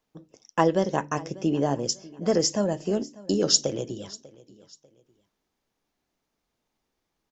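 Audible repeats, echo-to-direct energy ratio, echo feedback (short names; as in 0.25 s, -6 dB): 2, -20.5 dB, 33%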